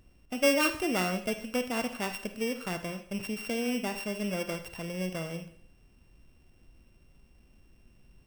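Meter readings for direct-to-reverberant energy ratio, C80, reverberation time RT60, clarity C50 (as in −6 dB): 8.0 dB, 14.5 dB, 0.60 s, 10.5 dB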